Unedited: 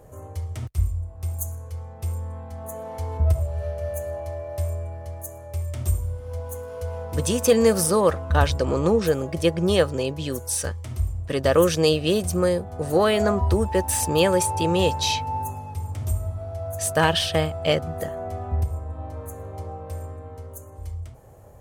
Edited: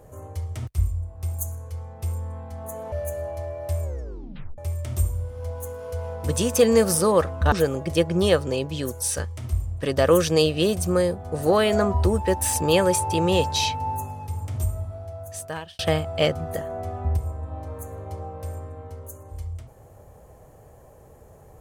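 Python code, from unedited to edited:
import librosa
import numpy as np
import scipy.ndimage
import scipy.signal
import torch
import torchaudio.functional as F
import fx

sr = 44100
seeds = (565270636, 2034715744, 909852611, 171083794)

y = fx.edit(x, sr, fx.cut(start_s=2.92, length_s=0.89),
    fx.tape_stop(start_s=4.71, length_s=0.76),
    fx.cut(start_s=8.41, length_s=0.58),
    fx.fade_out_span(start_s=16.09, length_s=1.17), tone=tone)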